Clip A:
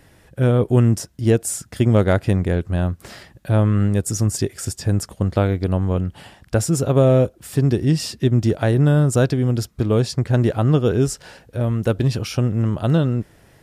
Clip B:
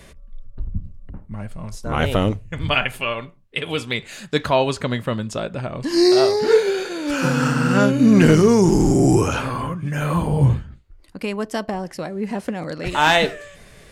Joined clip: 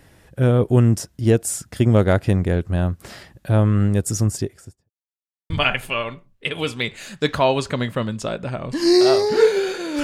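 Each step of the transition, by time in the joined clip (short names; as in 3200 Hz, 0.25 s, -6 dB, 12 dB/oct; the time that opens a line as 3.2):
clip A
4.17–4.9 studio fade out
4.9–5.5 mute
5.5 switch to clip B from 2.61 s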